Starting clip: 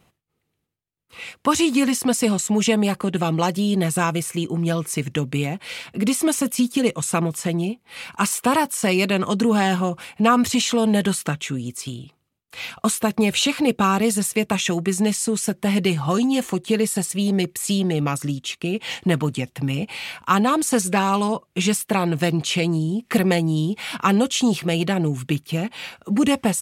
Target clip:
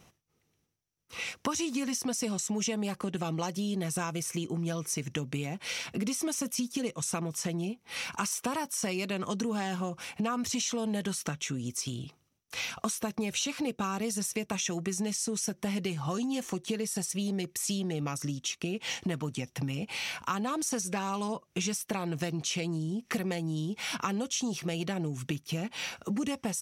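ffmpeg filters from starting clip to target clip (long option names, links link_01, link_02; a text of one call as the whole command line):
ffmpeg -i in.wav -af "equalizer=frequency=5800:width=5.7:gain=14.5,acompressor=threshold=-32dB:ratio=4" out.wav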